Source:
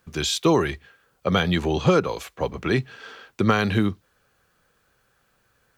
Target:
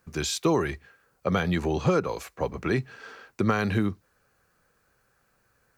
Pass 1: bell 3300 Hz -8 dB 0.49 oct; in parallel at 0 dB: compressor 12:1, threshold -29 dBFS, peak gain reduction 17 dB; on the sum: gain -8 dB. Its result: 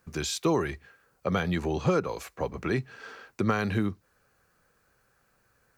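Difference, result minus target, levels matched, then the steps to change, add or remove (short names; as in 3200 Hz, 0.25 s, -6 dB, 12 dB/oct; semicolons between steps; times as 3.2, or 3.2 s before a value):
compressor: peak gain reduction +8.5 dB
change: compressor 12:1, threshold -20 dBFS, peak gain reduction 8.5 dB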